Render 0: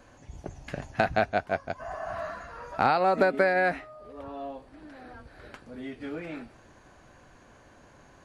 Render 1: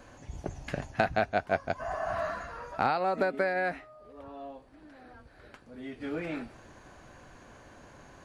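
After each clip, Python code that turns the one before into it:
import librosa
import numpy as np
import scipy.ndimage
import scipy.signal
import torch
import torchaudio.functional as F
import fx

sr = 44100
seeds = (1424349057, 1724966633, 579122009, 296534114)

y = fx.rider(x, sr, range_db=4, speed_s=0.5)
y = F.gain(torch.from_numpy(y), -1.5).numpy()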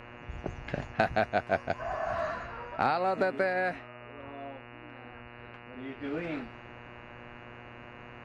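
y = fx.env_lowpass(x, sr, base_hz=2300.0, full_db=-24.0)
y = fx.dmg_buzz(y, sr, base_hz=120.0, harmonics=24, level_db=-49.0, tilt_db=-2, odd_only=False)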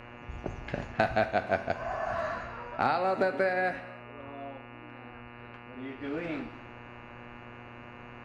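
y = fx.rev_gated(x, sr, seeds[0], gate_ms=340, shape='falling', drr_db=9.0)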